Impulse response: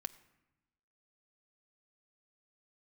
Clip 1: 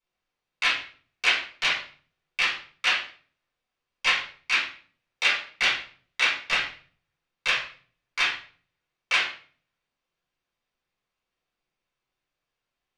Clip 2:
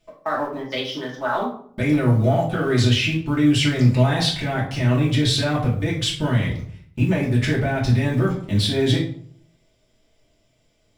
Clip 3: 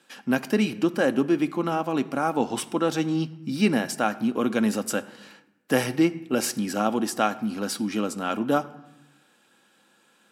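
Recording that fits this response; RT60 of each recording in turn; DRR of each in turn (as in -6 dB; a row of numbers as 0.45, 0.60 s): 3; 0.45, 0.55, 0.95 s; -8.5, -5.5, 8.5 dB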